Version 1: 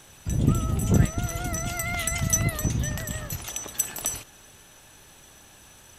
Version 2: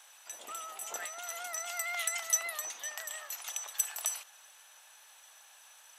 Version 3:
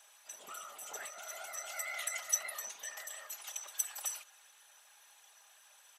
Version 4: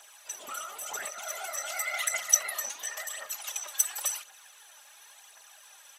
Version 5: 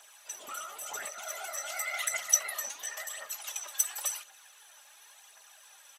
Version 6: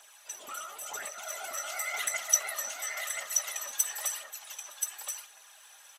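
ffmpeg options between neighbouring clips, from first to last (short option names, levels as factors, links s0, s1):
-af "highpass=f=720:w=0.5412,highpass=f=720:w=1.3066,volume=0.562"
-af "afftfilt=real='hypot(re,im)*cos(2*PI*random(0))':imag='hypot(re,im)*sin(2*PI*random(1))':win_size=512:overlap=0.75,aecho=1:1:4.9:0.33,volume=1.12"
-af "aphaser=in_gain=1:out_gain=1:delay=3.8:decay=0.49:speed=0.93:type=triangular,volume=2.24"
-filter_complex "[0:a]asplit=2[s0][s1];[s1]adelay=14,volume=0.251[s2];[s0][s2]amix=inputs=2:normalize=0,volume=0.75"
-af "aecho=1:1:1028:0.596"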